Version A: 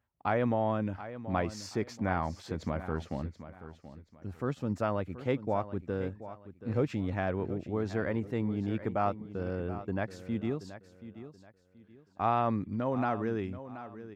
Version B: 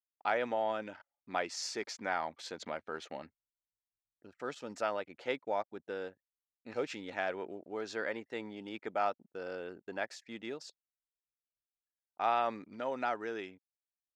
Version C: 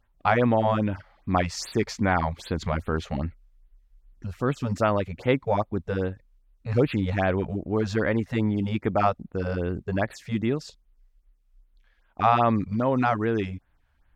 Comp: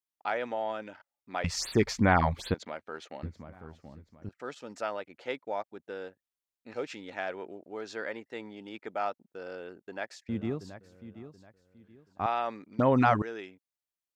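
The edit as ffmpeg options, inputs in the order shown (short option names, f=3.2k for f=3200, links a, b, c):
-filter_complex "[2:a]asplit=2[a][b];[0:a]asplit=2[c][d];[1:a]asplit=5[e][f][g][h][i];[e]atrim=end=1.442[j];[a]atrim=start=1.438:end=2.542[k];[f]atrim=start=2.538:end=3.232[l];[c]atrim=start=3.228:end=4.292[m];[g]atrim=start=4.288:end=10.292[n];[d]atrim=start=10.288:end=12.262[o];[h]atrim=start=12.258:end=12.792[p];[b]atrim=start=12.788:end=13.222[q];[i]atrim=start=13.218[r];[j][k]acrossfade=d=0.004:c1=hsin:c2=hsin[s];[s][l]acrossfade=d=0.004:c1=hsin:c2=hsin[t];[t][m]acrossfade=d=0.004:c1=hsin:c2=hsin[u];[u][n]acrossfade=d=0.004:c1=hsin:c2=hsin[v];[v][o]acrossfade=d=0.004:c1=hsin:c2=hsin[w];[w][p]acrossfade=d=0.004:c1=hsin:c2=hsin[x];[x][q]acrossfade=d=0.004:c1=hsin:c2=hsin[y];[y][r]acrossfade=d=0.004:c1=hsin:c2=hsin"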